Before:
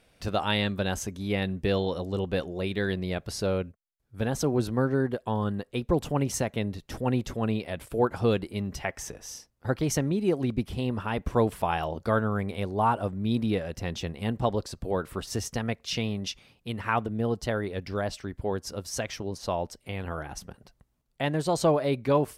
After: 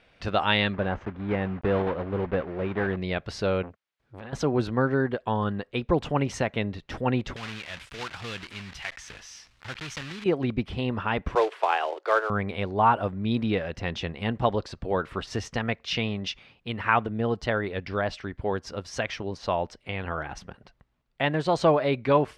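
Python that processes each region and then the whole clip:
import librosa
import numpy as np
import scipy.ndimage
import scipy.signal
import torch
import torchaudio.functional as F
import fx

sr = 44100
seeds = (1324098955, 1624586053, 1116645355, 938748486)

y = fx.chain(x, sr, fx.block_float(bits=3),
    fx.lowpass(hz=1300.0, slope=12), at=(0.73, 2.97))
y = fx.chain(y, sr, fx.highpass(hz=100.0, slope=6),
    fx.over_compress(threshold_db=-36.0, ratio=-1.0),
    fx.transformer_sat(knee_hz=730.0), at=(3.63, 4.33))
y = fx.chain(y, sr, fx.block_float(bits=3),
    fx.tone_stack(knobs='5-5-5'),
    fx.env_flatten(amount_pct=50), at=(7.36, 10.26))
y = fx.chain(y, sr, fx.steep_highpass(hz=350.0, slope=72),
    fx.high_shelf(hz=7100.0, db=-8.5),
    fx.quant_float(bits=2), at=(11.35, 12.3))
y = scipy.signal.sosfilt(scipy.signal.butter(2, 2800.0, 'lowpass', fs=sr, output='sos'), y)
y = fx.tilt_shelf(y, sr, db=-4.5, hz=970.0)
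y = y * librosa.db_to_amplitude(4.5)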